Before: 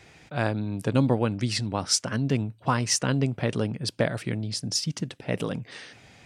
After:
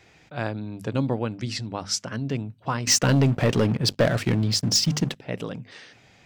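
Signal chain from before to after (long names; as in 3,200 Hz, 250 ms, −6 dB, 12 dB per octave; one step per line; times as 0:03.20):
parametric band 9,300 Hz −13.5 dB 0.2 octaves
mains-hum notches 50/100/150/200/250 Hz
0:02.87–0:05.15: leveller curve on the samples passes 3
level −2.5 dB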